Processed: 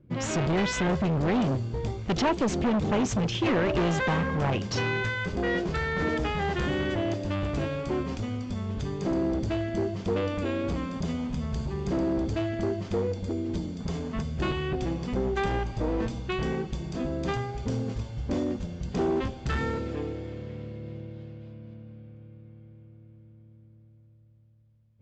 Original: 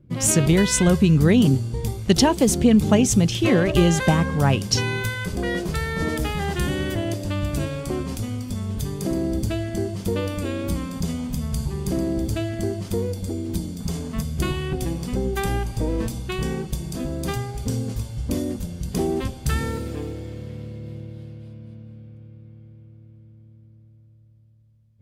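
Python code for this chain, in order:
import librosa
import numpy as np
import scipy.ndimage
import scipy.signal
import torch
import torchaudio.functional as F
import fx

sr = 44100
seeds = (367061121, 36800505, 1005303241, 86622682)

y = np.clip(x, -10.0 ** (-20.0 / 20.0), 10.0 ** (-20.0 / 20.0))
y = scipy.signal.sosfilt(scipy.signal.butter(12, 7500.0, 'lowpass', fs=sr, output='sos'), y)
y = fx.bass_treble(y, sr, bass_db=-5, treble_db=-11)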